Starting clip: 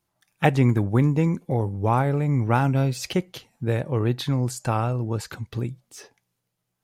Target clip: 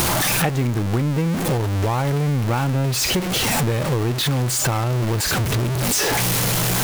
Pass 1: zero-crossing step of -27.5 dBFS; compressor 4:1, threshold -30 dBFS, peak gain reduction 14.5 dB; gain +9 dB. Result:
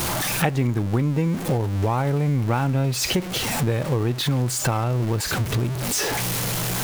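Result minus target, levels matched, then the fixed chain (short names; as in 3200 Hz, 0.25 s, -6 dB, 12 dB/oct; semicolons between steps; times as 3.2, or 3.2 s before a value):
zero-crossing step: distortion -7 dB
zero-crossing step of -17.5 dBFS; compressor 4:1, threshold -30 dBFS, peak gain reduction 15.5 dB; gain +9 dB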